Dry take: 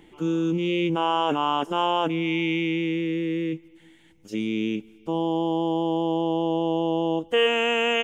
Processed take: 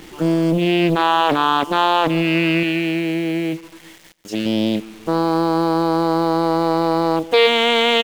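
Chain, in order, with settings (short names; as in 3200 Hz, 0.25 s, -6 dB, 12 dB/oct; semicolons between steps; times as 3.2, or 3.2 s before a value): 2.63–4.46 low shelf 270 Hz -7.5 dB; in parallel at -1 dB: compressor 6:1, threshold -38 dBFS, peak gain reduction 19.5 dB; on the sum: bit-crush 8-bit; echo 0.141 s -20 dB; Doppler distortion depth 0.48 ms; gain +6.5 dB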